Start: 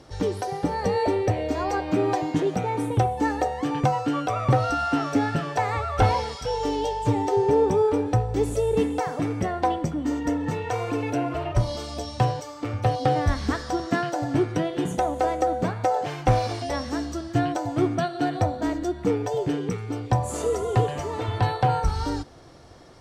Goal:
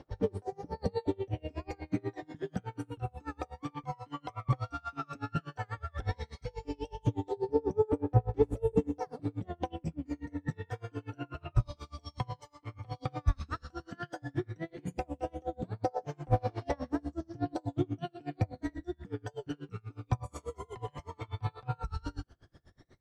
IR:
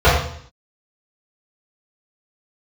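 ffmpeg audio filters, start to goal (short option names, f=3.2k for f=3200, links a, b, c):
-af "highshelf=f=6.5k:g=-10.5,aphaser=in_gain=1:out_gain=1:delay=1:decay=0.65:speed=0.12:type=triangular,aeval=exprs='val(0)*pow(10,-32*(0.5-0.5*cos(2*PI*8.2*n/s))/20)':c=same,volume=-8.5dB"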